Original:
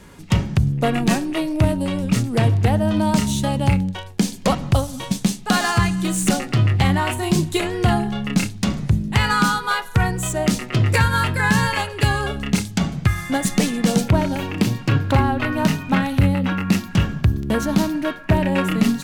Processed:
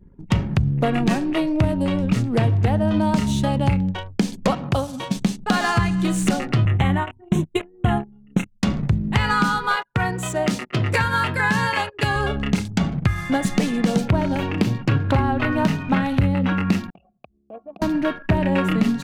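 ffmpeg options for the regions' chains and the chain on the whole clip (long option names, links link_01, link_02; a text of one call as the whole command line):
ffmpeg -i in.wav -filter_complex "[0:a]asettb=1/sr,asplit=3[link_01][link_02][link_03];[link_01]atrim=end=4.514[link_04];[link_02]atrim=start=4.51:end=5.16,asetpts=PTS-STARTPTS,afade=type=in:duration=0.004:curve=qsin,afade=type=out:start_time=0.646:duration=0.004:curve=qsin,highpass=frequency=190:poles=1,bandreject=frequency=2000:width=15[link_05];[link_03]atrim=start=5.156[link_06];[link_04][link_05]acrossfade=duration=0.004:curve1=hsin:curve2=qsin[link_07];[link_07][link_06]acrossfade=duration=0.004:curve1=qsin:curve2=hsin,asettb=1/sr,asplit=3[link_08][link_09][link_10];[link_08]atrim=end=6.654[link_11];[link_09]atrim=start=6.65:end=8.63,asetpts=PTS-STARTPTS,afade=type=in:duration=0.004:curve=qsin,afade=type=out:start_time=1.976:duration=0.004:curve=qsin,agate=range=-20dB:threshold=-20dB:ratio=16:release=100:detection=peak,asuperstop=centerf=4800:order=4:qfactor=1.9[link_12];[link_10]atrim=start=8.626[link_13];[link_11][link_12]acrossfade=duration=0.004:curve1=hsin:curve2=qsin[link_14];[link_14][link_13]acrossfade=duration=0.004:curve1=qsin:curve2=hsin,asettb=1/sr,asplit=3[link_15][link_16][link_17];[link_15]atrim=end=9.764[link_18];[link_16]atrim=start=9.76:end=12.16,asetpts=PTS-STARTPTS,afade=type=in:duration=0.004:curve=qsin,afade=type=out:start_time=2.396:duration=0.004:curve=qsin,highpass=92,agate=range=-10dB:threshold=-31dB:ratio=16:release=100:detection=peak,lowshelf=frequency=360:gain=-5[link_19];[link_17]atrim=start=12.156[link_20];[link_18][link_19]acrossfade=duration=0.004:curve1=hsin:curve2=qsin[link_21];[link_21][link_20]acrossfade=duration=0.004:curve1=qsin:curve2=hsin,asettb=1/sr,asplit=3[link_22][link_23][link_24];[link_22]atrim=end=16.904[link_25];[link_23]atrim=start=16.9:end=17.82,asetpts=PTS-STARTPTS,afade=type=in:duration=0.004:curve=qsin,afade=type=out:start_time=0.916:duration=0.004:curve=qsin,equalizer=frequency=1300:width_type=o:width=1.2:gain=-11,acompressor=threshold=-17dB:ratio=6:attack=3.2:release=140:knee=1:detection=peak,asplit=3[link_26][link_27][link_28];[link_26]bandpass=frequency=730:width_type=q:width=8,volume=0dB[link_29];[link_27]bandpass=frequency=1090:width_type=q:width=8,volume=-6dB[link_30];[link_28]bandpass=frequency=2440:width_type=q:width=8,volume=-9dB[link_31];[link_29][link_30][link_31]amix=inputs=3:normalize=0[link_32];[link_24]atrim=start=17.816[link_33];[link_25][link_32]acrossfade=duration=0.004:curve1=hsin:curve2=qsin[link_34];[link_34][link_33]acrossfade=duration=0.004:curve1=qsin:curve2=hsin,anlmdn=1.58,highshelf=frequency=5300:gain=-11.5,acompressor=threshold=-19dB:ratio=2.5,volume=2.5dB" out.wav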